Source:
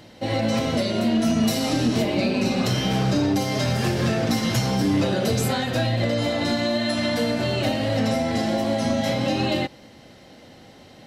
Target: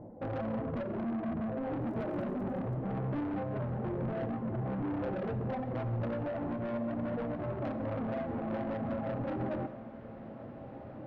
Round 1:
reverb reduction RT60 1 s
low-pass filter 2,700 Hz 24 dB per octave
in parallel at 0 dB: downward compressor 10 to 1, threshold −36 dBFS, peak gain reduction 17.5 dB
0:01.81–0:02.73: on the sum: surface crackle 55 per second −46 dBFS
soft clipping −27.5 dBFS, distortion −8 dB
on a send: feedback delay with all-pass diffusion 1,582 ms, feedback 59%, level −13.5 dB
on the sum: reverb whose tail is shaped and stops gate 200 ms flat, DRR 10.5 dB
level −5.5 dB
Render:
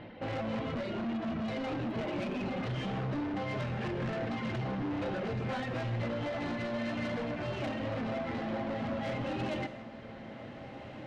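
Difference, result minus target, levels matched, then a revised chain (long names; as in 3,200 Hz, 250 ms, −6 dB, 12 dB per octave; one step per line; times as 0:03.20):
2,000 Hz band +8.0 dB
reverb reduction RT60 1 s
low-pass filter 820 Hz 24 dB per octave
in parallel at 0 dB: downward compressor 10 to 1, threshold −36 dBFS, peak gain reduction 17.5 dB
0:01.81–0:02.73: on the sum: surface crackle 55 per second −46 dBFS
soft clipping −27.5 dBFS, distortion −8 dB
on a send: feedback delay with all-pass diffusion 1,582 ms, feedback 59%, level −13.5 dB
on the sum: reverb whose tail is shaped and stops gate 200 ms flat, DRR 10.5 dB
level −5.5 dB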